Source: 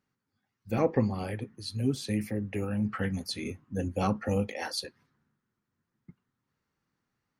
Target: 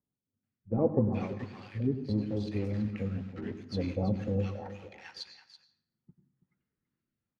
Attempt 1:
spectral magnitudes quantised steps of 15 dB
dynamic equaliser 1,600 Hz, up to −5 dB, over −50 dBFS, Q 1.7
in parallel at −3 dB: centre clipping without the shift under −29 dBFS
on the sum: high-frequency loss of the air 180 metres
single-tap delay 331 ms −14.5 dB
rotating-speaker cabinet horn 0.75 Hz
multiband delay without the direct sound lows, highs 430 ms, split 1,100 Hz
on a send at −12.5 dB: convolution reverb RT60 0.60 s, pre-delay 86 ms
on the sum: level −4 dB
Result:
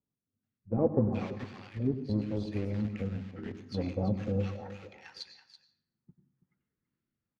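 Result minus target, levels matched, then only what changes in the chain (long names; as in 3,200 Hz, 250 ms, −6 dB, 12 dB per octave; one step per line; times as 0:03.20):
centre clipping without the shift: distortion +6 dB
change: centre clipping without the shift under −35 dBFS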